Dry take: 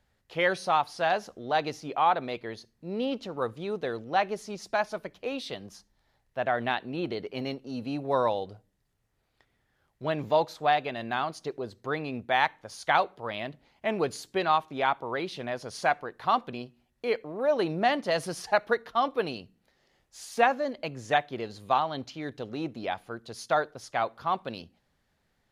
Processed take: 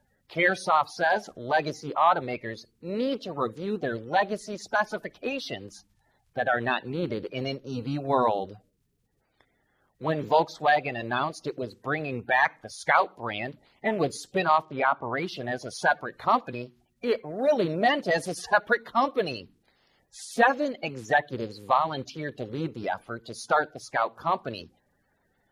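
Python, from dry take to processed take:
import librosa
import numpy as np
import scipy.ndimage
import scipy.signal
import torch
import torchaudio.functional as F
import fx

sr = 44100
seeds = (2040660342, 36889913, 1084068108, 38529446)

y = fx.spec_quant(x, sr, step_db=30)
y = fx.lowpass(y, sr, hz=fx.line((14.61, 4400.0), (15.16, 2100.0)), slope=12, at=(14.61, 15.16), fade=0.02)
y = y * 10.0 ** (3.0 / 20.0)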